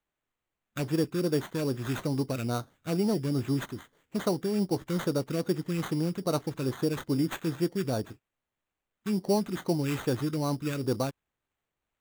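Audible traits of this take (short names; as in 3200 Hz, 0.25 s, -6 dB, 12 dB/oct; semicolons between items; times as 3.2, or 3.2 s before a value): phasing stages 2, 2.4 Hz, lowest notch 750–4300 Hz; aliases and images of a low sample rate 5100 Hz, jitter 0%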